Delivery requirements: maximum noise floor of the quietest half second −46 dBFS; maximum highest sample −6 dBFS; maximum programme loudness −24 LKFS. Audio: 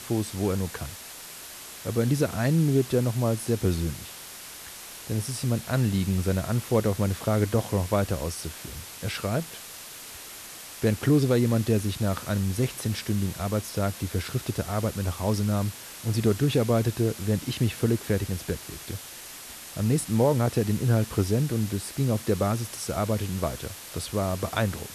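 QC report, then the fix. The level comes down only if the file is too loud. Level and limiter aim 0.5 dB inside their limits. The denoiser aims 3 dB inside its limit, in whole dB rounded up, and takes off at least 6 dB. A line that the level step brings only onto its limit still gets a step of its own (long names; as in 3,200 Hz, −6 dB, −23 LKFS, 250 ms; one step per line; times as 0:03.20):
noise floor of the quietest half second −42 dBFS: out of spec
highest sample −10.5 dBFS: in spec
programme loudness −27.0 LKFS: in spec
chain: broadband denoise 7 dB, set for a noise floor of −42 dBFS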